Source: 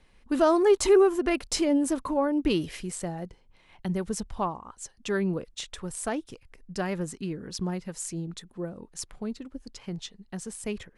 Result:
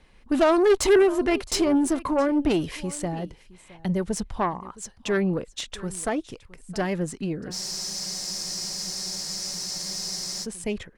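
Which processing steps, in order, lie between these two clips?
high shelf 8000 Hz -4.5 dB; echo 0.666 s -21 dB; added harmonics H 3 -16 dB, 5 -17 dB, 6 -22 dB, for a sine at -10.5 dBFS; spectral freeze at 7.54, 2.90 s; gain +3 dB

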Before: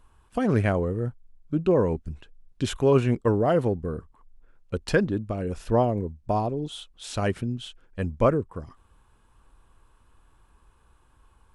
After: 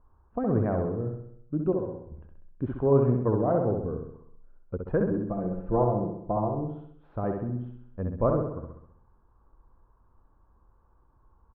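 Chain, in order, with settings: 1.72–2.12 resonator 110 Hz, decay 0.93 s, harmonics odd, mix 80%; LPF 1200 Hz 24 dB/oct; 5.11–6.74 comb 5.9 ms, depth 75%; feedback echo 65 ms, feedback 54%, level -4.5 dB; gain -4 dB

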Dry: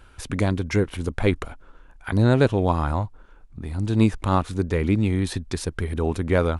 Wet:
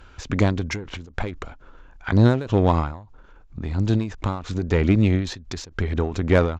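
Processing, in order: downsampling 16000 Hz; added harmonics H 8 -29 dB, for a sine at -5 dBFS; ending taper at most 100 dB/s; gain +3.5 dB

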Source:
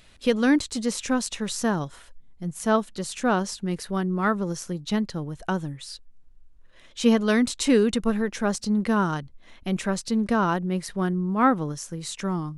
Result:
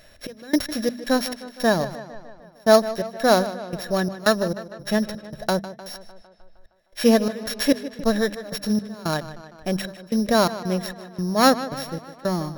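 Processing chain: sample sorter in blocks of 8 samples; step gate "xxx...xxxx.." 169 bpm -24 dB; de-hum 49.01 Hz, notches 5; small resonant body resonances 610/1700/3900 Hz, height 13 dB, ringing for 25 ms; on a send: tape echo 0.153 s, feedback 65%, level -13.5 dB, low-pass 5300 Hz; on the sum: gain +1.5 dB

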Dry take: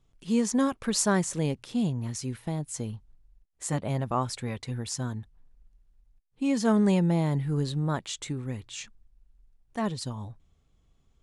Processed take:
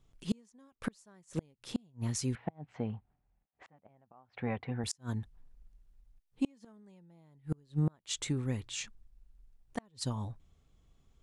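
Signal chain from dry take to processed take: flipped gate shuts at -20 dBFS, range -35 dB; 2.35–4.84 speaker cabinet 100–2500 Hz, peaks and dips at 130 Hz -4 dB, 340 Hz -3 dB, 750 Hz +9 dB

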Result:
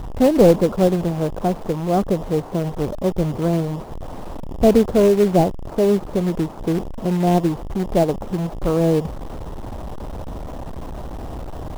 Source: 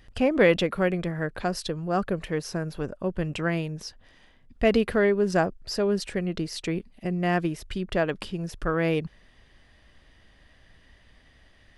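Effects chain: delta modulation 16 kbps, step -29 dBFS; inverse Chebyshev low-pass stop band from 2500 Hz, stop band 50 dB; in parallel at -3.5 dB: companded quantiser 4-bit; on the sum: gain +3.5 dB

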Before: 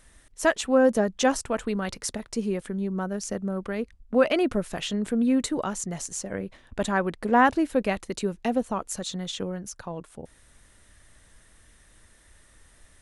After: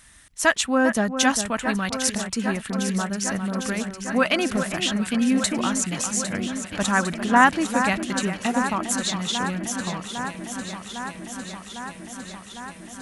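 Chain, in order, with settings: HPF 130 Hz 6 dB/oct; bell 460 Hz -13 dB 1.4 oct; on a send: echo with dull and thin repeats by turns 0.402 s, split 2300 Hz, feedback 87%, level -8.5 dB; on the sum: gain +8 dB

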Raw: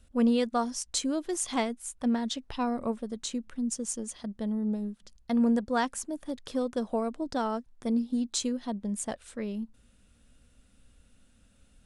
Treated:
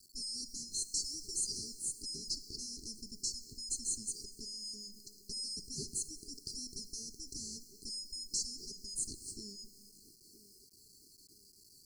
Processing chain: four-band scrambler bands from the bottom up 2143; tube stage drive 36 dB, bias 0.5; on a send: narrowing echo 0.963 s, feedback 72%, band-pass 620 Hz, level -12.5 dB; on the sum: Schroeder reverb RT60 1.6 s, combs from 30 ms, DRR 14 dB; spectral repair 0.96–1.81, 760–2000 Hz; in parallel at -2 dB: compressor, threshold -45 dBFS, peak gain reduction 10.5 dB; on the sum: downsampling 22050 Hz; sample gate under -55 dBFS; brick-wall FIR band-stop 440–4100 Hz; gain +3 dB

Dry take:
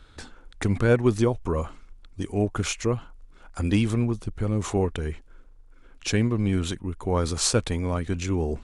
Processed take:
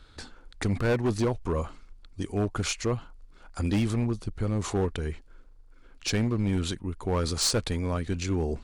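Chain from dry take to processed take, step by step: bell 4500 Hz +6 dB 0.34 oct; overloaded stage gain 18.5 dB; gain -2 dB

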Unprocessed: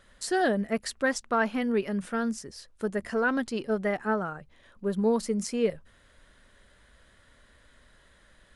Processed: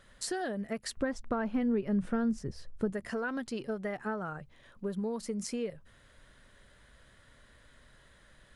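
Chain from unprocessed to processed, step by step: bell 130 Hz +6.5 dB 0.42 oct; compressor 6:1, threshold -31 dBFS, peak gain reduction 11 dB; 0.97–2.93 tilt -3 dB/oct; gain -1 dB

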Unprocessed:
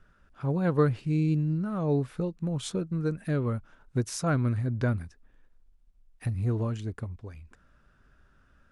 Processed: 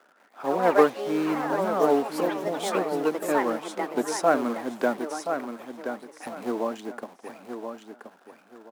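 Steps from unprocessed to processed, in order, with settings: in parallel at -8 dB: companded quantiser 4-bit; on the sum: steep high-pass 230 Hz 36 dB/oct; bell 760 Hz +12 dB 1.1 oct; feedback echo 1.026 s, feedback 25%, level -7.5 dB; echoes that change speed 0.169 s, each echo +5 st, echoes 3, each echo -6 dB; gain -1 dB

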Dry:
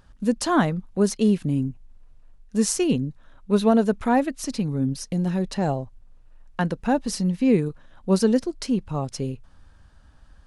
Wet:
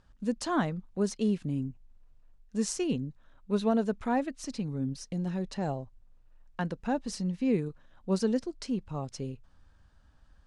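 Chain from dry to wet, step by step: LPF 8900 Hz 24 dB/oct; gain -8.5 dB

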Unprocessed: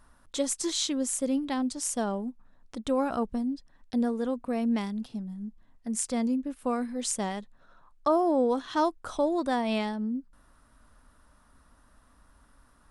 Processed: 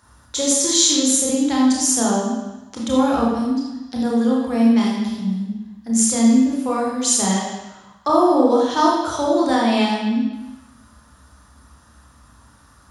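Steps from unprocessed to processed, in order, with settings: high shelf 5400 Hz +6 dB; reverb RT60 1.0 s, pre-delay 21 ms, DRR -3.5 dB

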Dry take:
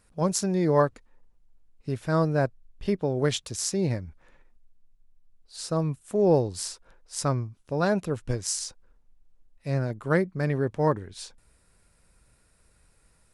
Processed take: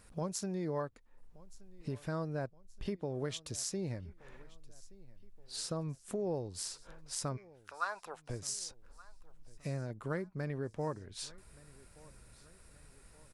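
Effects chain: compressor 3:1, threshold -44 dBFS, peak gain reduction 20.5 dB; 7.36–8.29 resonant high-pass 2200 Hz -> 650 Hz, resonance Q 4.5; feedback echo 1.174 s, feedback 47%, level -22.5 dB; gain +3.5 dB

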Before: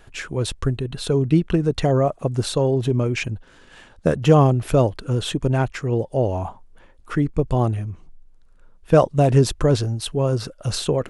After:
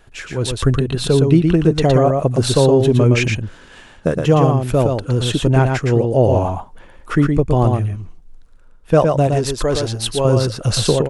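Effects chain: 9.27–10.25 bell 150 Hz -11 dB 2.2 oct; AGC gain up to 11.5 dB; echo 0.116 s -4.5 dB; gain -1 dB

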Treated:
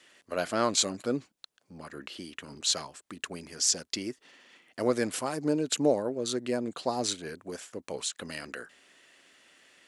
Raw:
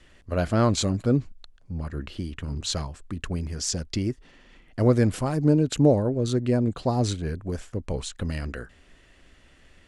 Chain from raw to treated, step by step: HPF 250 Hz 12 dB/oct; tilt +2 dB/oct; gain -2 dB

